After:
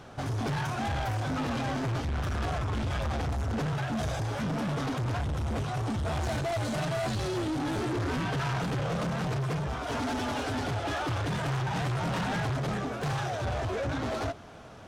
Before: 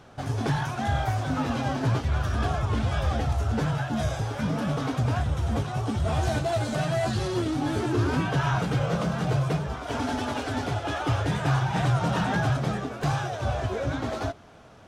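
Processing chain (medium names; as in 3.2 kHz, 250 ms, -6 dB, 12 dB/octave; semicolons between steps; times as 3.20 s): saturation -31 dBFS, distortion -7 dB; trim +3 dB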